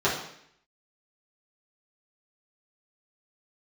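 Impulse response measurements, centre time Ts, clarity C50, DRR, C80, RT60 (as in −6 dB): 37 ms, 4.5 dB, −9.0 dB, 8.5 dB, 0.70 s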